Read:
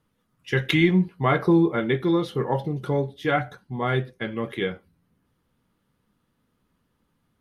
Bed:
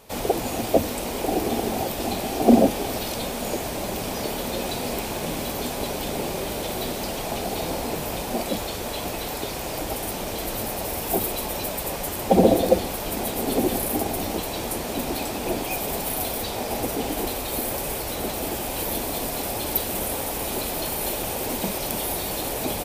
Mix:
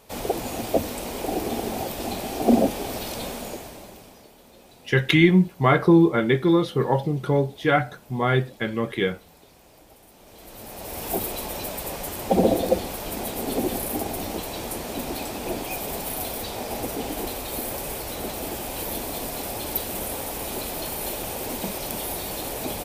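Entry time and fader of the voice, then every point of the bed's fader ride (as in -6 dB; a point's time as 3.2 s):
4.40 s, +3.0 dB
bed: 3.32 s -3 dB
4.31 s -23 dB
10.11 s -23 dB
11.04 s -3 dB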